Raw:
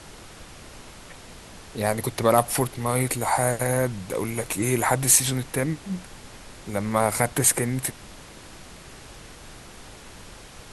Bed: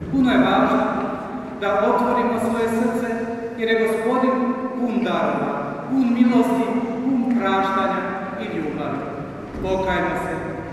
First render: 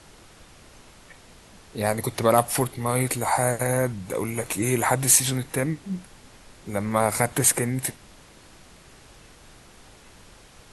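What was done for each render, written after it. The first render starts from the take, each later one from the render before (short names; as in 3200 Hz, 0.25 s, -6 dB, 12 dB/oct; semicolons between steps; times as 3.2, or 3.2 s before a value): noise print and reduce 6 dB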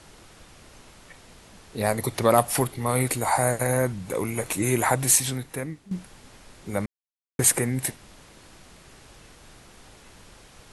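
4.85–5.91 fade out, to -12 dB; 6.86–7.39 mute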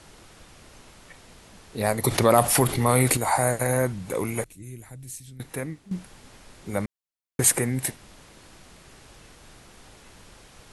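2.04–3.17 fast leveller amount 50%; 4.44–5.4 passive tone stack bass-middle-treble 10-0-1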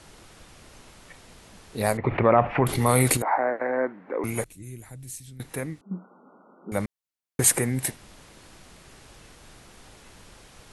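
1.97–2.67 Chebyshev low-pass 2500 Hz, order 4; 3.22–4.24 Chebyshev band-pass 270–1900 Hz, order 3; 5.81–6.72 brick-wall FIR band-pass 170–1500 Hz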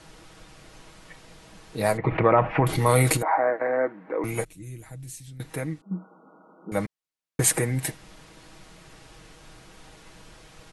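high shelf 10000 Hz -8.5 dB; comb 6.3 ms, depth 52%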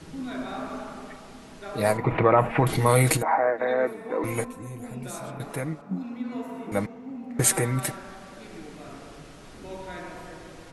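add bed -17.5 dB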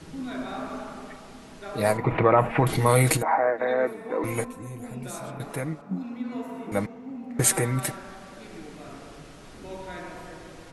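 nothing audible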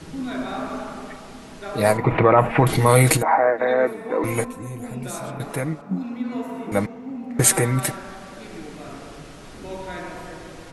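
gain +5 dB; limiter -2 dBFS, peak gain reduction 2.5 dB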